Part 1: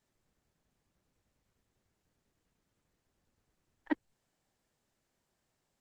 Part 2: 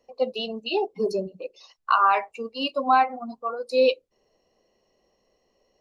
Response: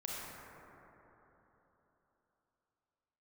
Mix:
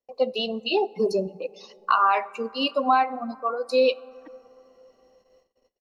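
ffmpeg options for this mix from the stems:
-filter_complex "[0:a]adelay=350,volume=-17dB[a];[1:a]acompressor=threshold=-21dB:ratio=2,volume=2.5dB,asplit=2[b][c];[c]volume=-22dB[d];[2:a]atrim=start_sample=2205[e];[d][e]afir=irnorm=-1:irlink=0[f];[a][b][f]amix=inputs=3:normalize=0,agate=range=-27dB:threshold=-60dB:ratio=16:detection=peak"

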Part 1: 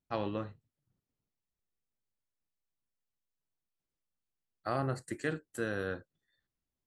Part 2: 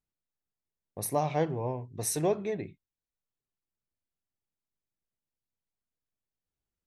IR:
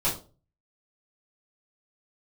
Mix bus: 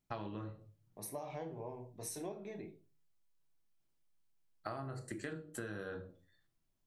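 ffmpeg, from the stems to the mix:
-filter_complex "[0:a]volume=1.5dB,asplit=2[a][b];[b]volume=-13.5dB[c];[1:a]highpass=170,volume=-13dB,asplit=2[d][e];[e]volume=-12dB[f];[2:a]atrim=start_sample=2205[g];[c][f]amix=inputs=2:normalize=0[h];[h][g]afir=irnorm=-1:irlink=0[i];[a][d][i]amix=inputs=3:normalize=0,acompressor=threshold=-39dB:ratio=16"

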